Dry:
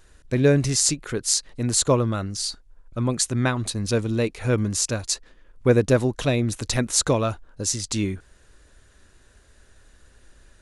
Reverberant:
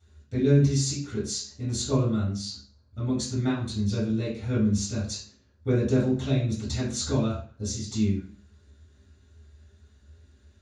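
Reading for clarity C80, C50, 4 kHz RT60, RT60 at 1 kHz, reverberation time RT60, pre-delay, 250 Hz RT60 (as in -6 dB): 10.0 dB, 4.0 dB, 0.40 s, 0.45 s, 0.45 s, 3 ms, 0.55 s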